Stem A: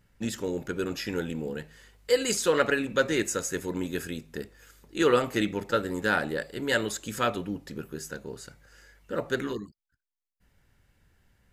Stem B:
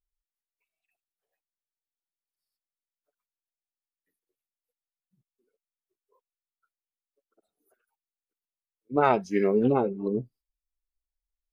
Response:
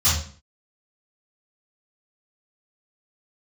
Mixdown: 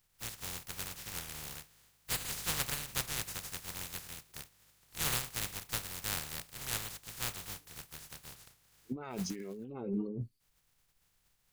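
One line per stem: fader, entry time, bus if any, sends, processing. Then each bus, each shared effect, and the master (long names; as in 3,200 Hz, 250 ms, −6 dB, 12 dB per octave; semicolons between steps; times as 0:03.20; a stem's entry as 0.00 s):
−17.0 dB, 0.00 s, no send, compressing power law on the bin magnitudes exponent 0.11; low shelf with overshoot 190 Hz +8 dB, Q 1.5
+2.0 dB, 0.00 s, no send, parametric band 750 Hz −8 dB 2.2 octaves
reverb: not used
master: notch filter 620 Hz, Q 15; compressor whose output falls as the input rises −37 dBFS, ratio −1; wow of a warped record 33 1/3 rpm, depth 100 cents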